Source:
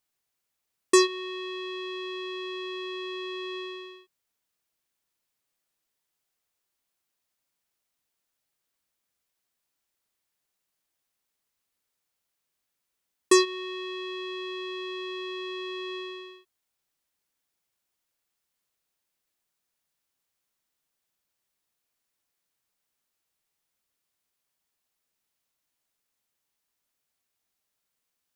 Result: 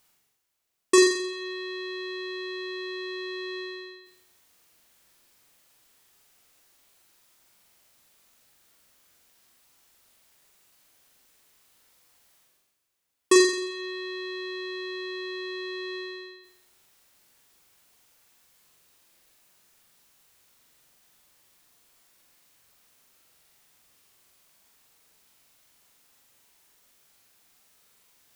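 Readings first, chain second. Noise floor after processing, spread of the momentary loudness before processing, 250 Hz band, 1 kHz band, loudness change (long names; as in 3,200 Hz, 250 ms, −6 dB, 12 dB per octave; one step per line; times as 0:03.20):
−70 dBFS, 15 LU, +2.5 dB, −2.0 dB, +2.0 dB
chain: reversed playback
upward compression, threshold −50 dBFS
reversed playback
flutter between parallel walls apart 7.5 metres, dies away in 0.69 s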